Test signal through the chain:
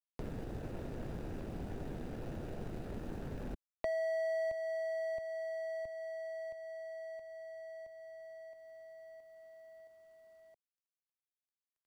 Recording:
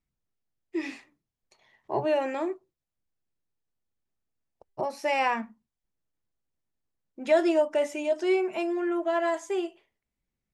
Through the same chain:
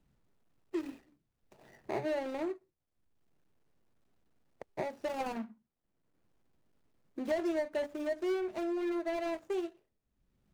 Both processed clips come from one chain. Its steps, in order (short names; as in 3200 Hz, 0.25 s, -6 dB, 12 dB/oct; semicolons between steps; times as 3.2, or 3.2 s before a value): median filter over 41 samples; three-band squash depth 70%; gain -5 dB